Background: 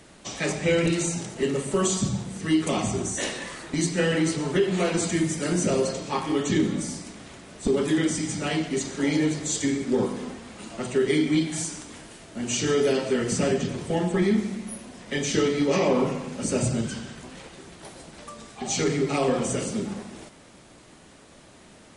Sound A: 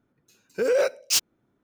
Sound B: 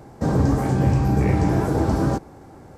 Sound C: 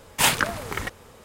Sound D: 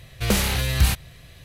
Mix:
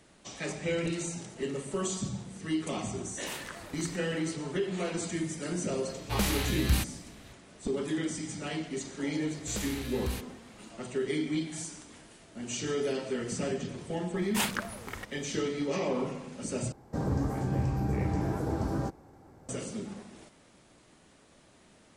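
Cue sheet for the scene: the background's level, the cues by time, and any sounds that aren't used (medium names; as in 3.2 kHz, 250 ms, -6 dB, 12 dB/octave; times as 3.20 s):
background -9 dB
3.08 s: add C -13 dB + compression 2:1, threshold -31 dBFS
5.89 s: add D -8 dB + band-stop 500 Hz
9.26 s: add D -16.5 dB
14.16 s: add C -11 dB
16.72 s: replace with B -11 dB
not used: A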